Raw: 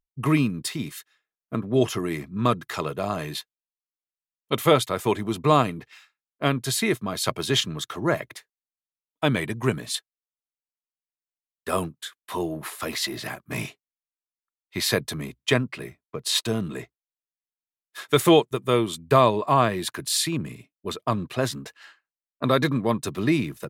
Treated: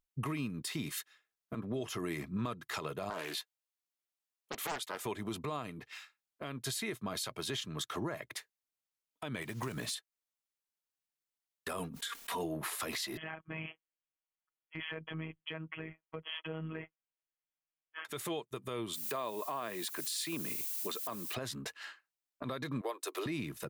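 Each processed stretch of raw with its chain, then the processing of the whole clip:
0:03.10–0:05.01: high-pass filter 340 Hz + highs frequency-modulated by the lows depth 0.83 ms
0:09.42–0:09.94: one scale factor per block 5 bits + downward compressor, threshold −30 dBFS
0:11.79–0:12.44: comb filter 4.3 ms, depth 68% + background raised ahead of every attack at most 53 dB per second
0:13.17–0:18.05: linear-phase brick-wall low-pass 3,400 Hz + downward compressor 2 to 1, threshold −38 dBFS + phases set to zero 159 Hz
0:18.93–0:21.33: high-pass filter 240 Hz + background noise violet −39 dBFS
0:22.81–0:23.26: Butterworth high-pass 350 Hz 48 dB per octave + high-shelf EQ 9,100 Hz +7 dB
whole clip: low-shelf EQ 490 Hz −4 dB; downward compressor 6 to 1, threshold −34 dBFS; brickwall limiter −29 dBFS; level +1.5 dB

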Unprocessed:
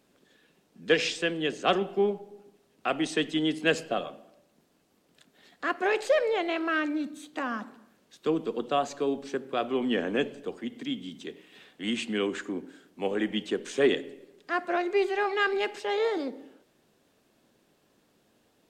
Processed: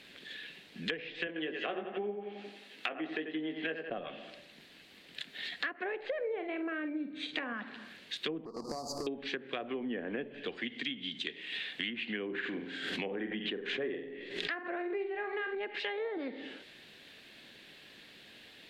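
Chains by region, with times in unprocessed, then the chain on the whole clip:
0:01.27–0:03.90: high-pass filter 270 Hz + double-tracking delay 19 ms −6 dB + bucket-brigade delay 88 ms, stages 2,048, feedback 48%, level −8 dB
0:06.19–0:07.53: parametric band 240 Hz −5 dB 0.29 octaves + double-tracking delay 46 ms −10 dB + hollow resonant body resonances 220/440/2,300 Hz, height 7 dB, ringing for 20 ms
0:08.45–0:09.07: each half-wave held at its own peak + Chebyshev band-stop filter 1,200–4,700 Hz, order 5 + downward compressor 8 to 1, threshold −37 dBFS
0:12.25–0:15.55: flutter between parallel walls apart 7.8 metres, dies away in 0.4 s + background raised ahead of every attack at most 110 dB per second
whole clip: treble cut that deepens with the level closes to 890 Hz, closed at −24.5 dBFS; flat-topped bell 2,700 Hz +15 dB; downward compressor 6 to 1, threshold −41 dBFS; level +5.5 dB

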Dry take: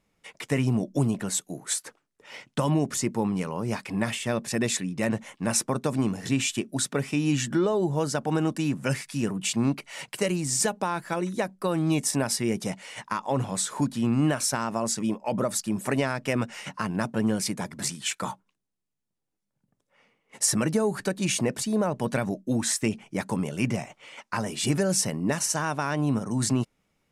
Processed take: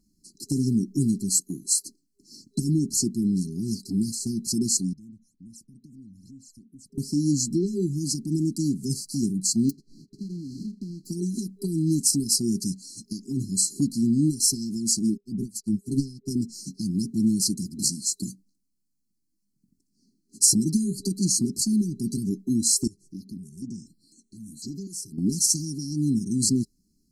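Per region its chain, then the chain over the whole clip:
0:04.93–0:06.98: guitar amp tone stack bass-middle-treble 10-0-1 + all-pass phaser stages 12, 2.3 Hz, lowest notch 440–4,300 Hz + downward compressor 3 to 1, threshold −51 dBFS
0:09.69–0:11.05: spectral envelope flattened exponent 0.1 + low-pass filter 1,400 Hz + downward compressor 2.5 to 1, threshold −37 dBFS
0:15.17–0:16.31: low-shelf EQ 140 Hz +12 dB + expander for the loud parts 2.5 to 1, over −39 dBFS
0:22.87–0:25.18: downward compressor 2 to 1, threshold −46 dBFS + step-sequenced phaser 4 Hz 850–5,000 Hz
whole clip: brick-wall band-stop 400–4,000 Hz; dynamic equaliser 260 Hz, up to −6 dB, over −40 dBFS, Q 1.9; comb filter 4.1 ms, depth 53%; level +5 dB

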